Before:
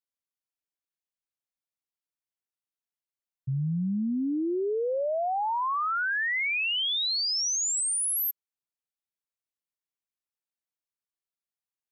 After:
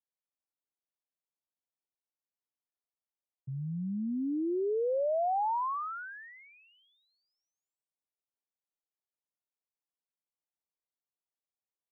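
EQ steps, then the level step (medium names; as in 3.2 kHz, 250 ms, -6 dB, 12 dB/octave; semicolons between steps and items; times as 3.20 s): high-pass 350 Hz 6 dB/octave; low-pass 1 kHz 24 dB/octave; 0.0 dB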